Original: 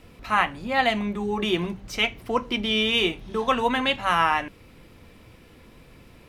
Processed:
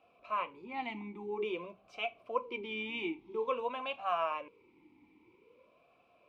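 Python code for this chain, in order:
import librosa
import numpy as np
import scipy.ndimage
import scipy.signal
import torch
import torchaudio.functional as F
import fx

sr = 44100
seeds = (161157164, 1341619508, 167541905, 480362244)

y = fx.vowel_sweep(x, sr, vowels='a-u', hz=0.5)
y = F.gain(torch.from_numpy(y), -1.5).numpy()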